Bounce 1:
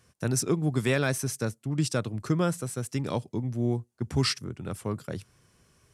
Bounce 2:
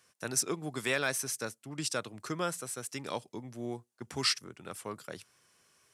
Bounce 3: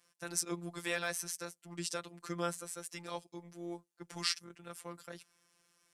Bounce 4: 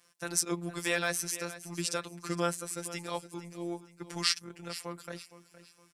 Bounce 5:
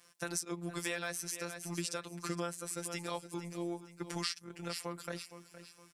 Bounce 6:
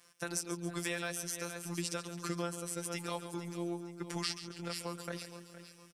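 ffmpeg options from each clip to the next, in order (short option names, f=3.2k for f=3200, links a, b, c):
-af "highpass=f=880:p=1"
-af "afftfilt=real='hypot(re,im)*cos(PI*b)':imag='0':win_size=1024:overlap=0.75,volume=-1.5dB"
-af "aecho=1:1:464|928|1392:0.178|0.0605|0.0206,volume=5.5dB"
-af "acompressor=threshold=-37dB:ratio=4,volume=2.5dB"
-af "aecho=1:1:139|278|417|556|695:0.251|0.126|0.0628|0.0314|0.0157"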